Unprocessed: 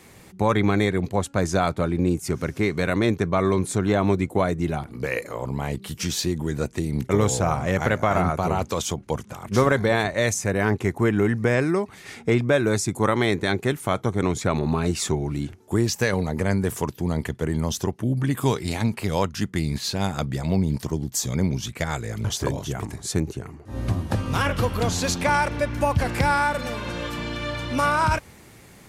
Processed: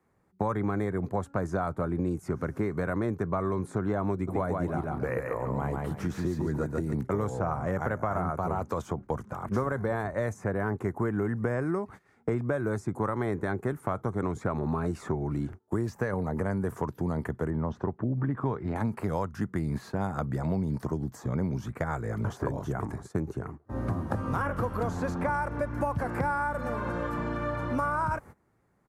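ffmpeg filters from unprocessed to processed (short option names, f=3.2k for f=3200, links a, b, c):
-filter_complex "[0:a]asplit=3[a][b][c];[a]afade=t=out:st=4.27:d=0.02[d];[b]aecho=1:1:142|284|426:0.631|0.151|0.0363,afade=t=in:st=4.27:d=0.02,afade=t=out:st=6.94:d=0.02[e];[c]afade=t=in:st=6.94:d=0.02[f];[d][e][f]amix=inputs=3:normalize=0,asettb=1/sr,asplit=3[g][h][i];[g]atrim=end=17.504[j];[h]atrim=start=17.5:end=18.76,asetpts=PTS-STARTPTS,afade=t=in:d=0.004:c=qsin,afade=t=out:st=1.256:d=0.004:c=qsin,lowpass=1.9k[k];[i]atrim=start=18.756[l];[j][k]acrossfade=d=0.004:c1=hsin:c2=qsin[m];[m][l]acrossfade=d=0.004:c1=qsin:c2=hsin,highshelf=f=2k:t=q:w=1.5:g=-12.5,agate=range=-21dB:threshold=-38dB:ratio=16:detection=peak,acrossover=split=120|2500|7000[n][o][p][q];[n]acompressor=threshold=-38dB:ratio=4[r];[o]acompressor=threshold=-28dB:ratio=4[s];[p]acompressor=threshold=-59dB:ratio=4[t];[q]acompressor=threshold=-58dB:ratio=4[u];[r][s][t][u]amix=inputs=4:normalize=0"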